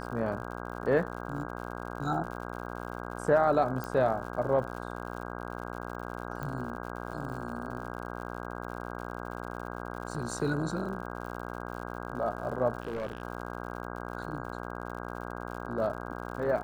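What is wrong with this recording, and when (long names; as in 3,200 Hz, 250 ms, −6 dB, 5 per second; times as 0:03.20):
mains buzz 60 Hz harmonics 27 −39 dBFS
surface crackle 93 per second −41 dBFS
0:03.84: click −22 dBFS
0:06.43: click −24 dBFS
0:12.82–0:13.22: clipping −30.5 dBFS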